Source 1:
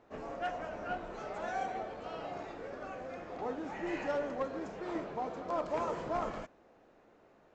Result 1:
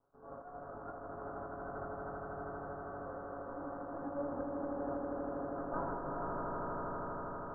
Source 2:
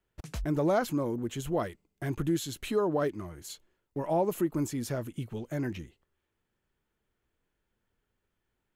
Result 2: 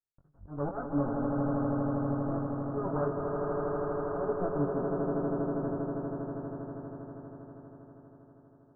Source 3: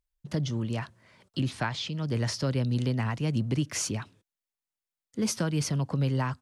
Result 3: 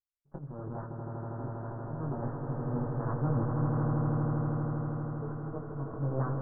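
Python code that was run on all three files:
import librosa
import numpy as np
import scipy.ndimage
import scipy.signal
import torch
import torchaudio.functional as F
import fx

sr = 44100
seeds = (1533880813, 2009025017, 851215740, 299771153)

y = fx.lower_of_two(x, sr, delay_ms=7.2)
y = fx.power_curve(y, sr, exponent=1.4)
y = scipy.signal.sosfilt(scipy.signal.butter(12, 1500.0, 'lowpass', fs=sr, output='sos'), y)
y = fx.auto_swell(y, sr, attack_ms=232.0)
y = fx.doubler(y, sr, ms=21.0, db=-4.5)
y = fx.echo_swell(y, sr, ms=80, loudest=8, wet_db=-6.0)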